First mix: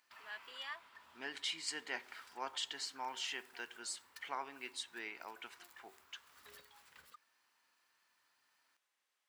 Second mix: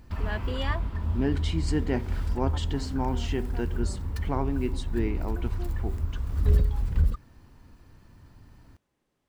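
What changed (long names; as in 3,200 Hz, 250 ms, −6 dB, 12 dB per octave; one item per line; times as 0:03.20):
background +8.5 dB
master: remove high-pass filter 1,400 Hz 12 dB per octave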